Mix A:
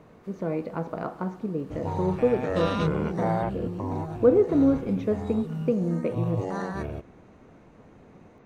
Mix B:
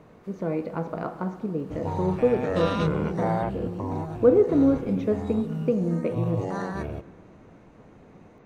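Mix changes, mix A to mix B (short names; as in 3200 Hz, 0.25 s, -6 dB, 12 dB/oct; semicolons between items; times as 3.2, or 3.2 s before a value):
speech: send +6.0 dB; second sound: send on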